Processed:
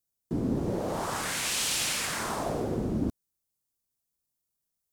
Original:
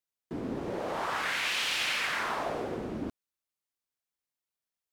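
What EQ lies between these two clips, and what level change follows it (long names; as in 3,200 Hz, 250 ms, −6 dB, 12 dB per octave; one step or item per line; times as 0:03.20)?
bass and treble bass +8 dB, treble +6 dB
dynamic equaliser 8,500 Hz, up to +6 dB, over −50 dBFS, Q 1
parametric band 2,300 Hz −9 dB 2.4 octaves
+3.5 dB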